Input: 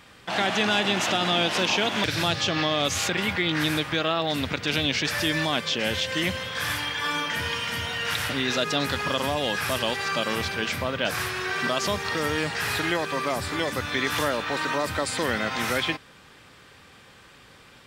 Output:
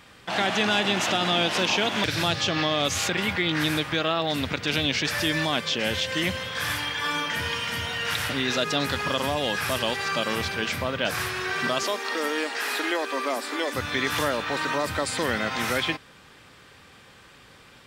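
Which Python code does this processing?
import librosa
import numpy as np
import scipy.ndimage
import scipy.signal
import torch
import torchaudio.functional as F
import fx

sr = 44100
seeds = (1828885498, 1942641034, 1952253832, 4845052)

y = fx.ellip_highpass(x, sr, hz=240.0, order=4, stop_db=40, at=(11.83, 13.75))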